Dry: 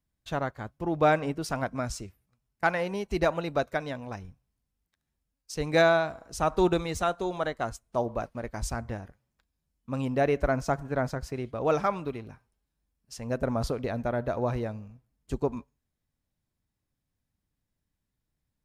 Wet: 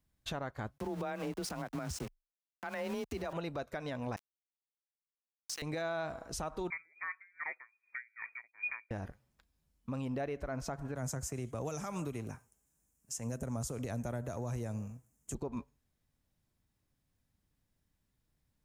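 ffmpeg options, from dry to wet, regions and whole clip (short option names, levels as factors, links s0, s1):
-filter_complex "[0:a]asettb=1/sr,asplit=3[s0][s1][s2];[s0]atrim=end=0.784[s3];[s1]atrim=start=0.78:end=3.33,asetpts=PTS-STARTPTS,afade=t=in:d=0.004:c=qsin,afade=t=out:st=2.546:d=0.004:c=qsin,aeval=exprs='val(0)*gte(abs(val(0)),0.00891)':c=same,acompressor=threshold=0.0282:ratio=2.5:attack=3.2:release=140:knee=1:detection=peak,afreqshift=23[s4];[s2]atrim=start=3.326[s5];[s3][s4]acrossfade=d=0.004:c1=hsin:c2=qsin[s6];[s6][s5]acrossfade=d=0.004:c1=qsin:c2=hsin,asettb=1/sr,asplit=3[s7][s8][s9];[s7]atrim=end=4.164[s10];[s8]atrim=start=4.16:end=5.62,asetpts=PTS-STARTPTS,afade=t=in:d=0.004:c=qsin,afade=t=out:st=1.456:d=0.004:c=qsin,highpass=1400,acontrast=78,aeval=exprs='val(0)*gte(abs(val(0)),0.0112)':c=same[s11];[s9]atrim=start=5.616[s12];[s10][s11]acrossfade=d=0.004:c1=hsin:c2=qsin[s13];[s13][s12]acrossfade=d=0.004:c1=qsin:c2=hsin,asettb=1/sr,asplit=3[s14][s15][s16];[s14]atrim=end=6.704[s17];[s15]atrim=start=6.7:end=8.91,asetpts=PTS-STARTPTS,afade=t=in:d=0.004:c=qsin,afade=t=out:st=2.206:d=0.004:c=qsin,lowpass=f=2100:t=q:w=0.5098,lowpass=f=2100:t=q:w=0.6013,lowpass=f=2100:t=q:w=0.9,lowpass=f=2100:t=q:w=2.563,afreqshift=-2500,aeval=exprs='val(0)*pow(10,-38*(0.5-0.5*cos(2*PI*2.5*n/s))/20)':c=same[s18];[s16]atrim=start=8.906[s19];[s17][s18]acrossfade=d=0.004:c1=hsin:c2=qsin[s20];[s20][s19]acrossfade=d=0.004:c1=qsin:c2=hsin,asettb=1/sr,asplit=3[s21][s22][s23];[s21]atrim=end=10.954[s24];[s22]atrim=start=10.95:end=15.35,asetpts=PTS-STARTPTS,afade=t=in:d=0.004:c=qsin,afade=t=out:st=4.396:d=0.004:c=qsin,highpass=71,highshelf=f=5500:t=q:w=3:g=8.5,acrossover=split=180|3000[s25][s26][s27];[s26]acompressor=threshold=0.00708:ratio=2:attack=3.2:release=140:knee=2.83:detection=peak[s28];[s25][s28][s27]amix=inputs=3:normalize=0[s29];[s23]atrim=start=15.346[s30];[s24][s29]acrossfade=d=0.004:c1=hsin:c2=qsin[s31];[s31][s30]acrossfade=d=0.004:c1=qsin:c2=hsin,acompressor=threshold=0.0178:ratio=2,alimiter=level_in=2.51:limit=0.0631:level=0:latency=1:release=118,volume=0.398,volume=1.41"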